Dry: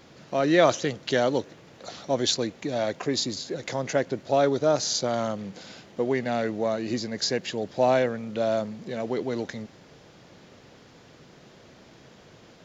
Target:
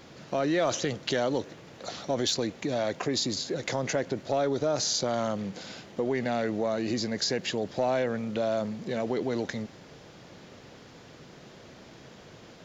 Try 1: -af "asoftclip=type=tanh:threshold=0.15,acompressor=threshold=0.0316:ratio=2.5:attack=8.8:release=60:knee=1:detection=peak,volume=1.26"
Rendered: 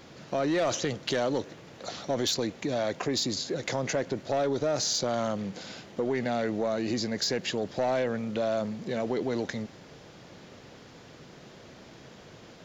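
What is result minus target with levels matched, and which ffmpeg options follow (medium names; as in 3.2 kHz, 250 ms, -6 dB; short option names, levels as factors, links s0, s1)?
saturation: distortion +10 dB
-af "asoftclip=type=tanh:threshold=0.355,acompressor=threshold=0.0316:ratio=2.5:attack=8.8:release=60:knee=1:detection=peak,volume=1.26"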